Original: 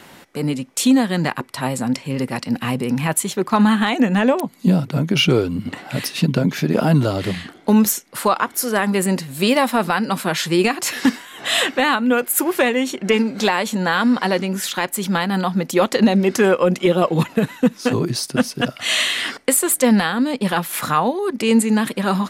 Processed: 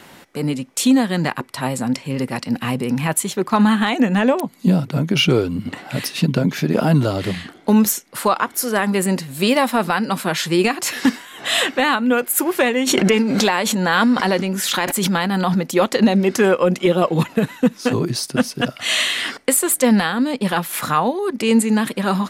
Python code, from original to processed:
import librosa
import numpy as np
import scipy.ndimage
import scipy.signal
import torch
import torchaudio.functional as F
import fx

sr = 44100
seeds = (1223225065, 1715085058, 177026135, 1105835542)

y = fx.pre_swell(x, sr, db_per_s=21.0, at=(12.86, 15.58), fade=0.02)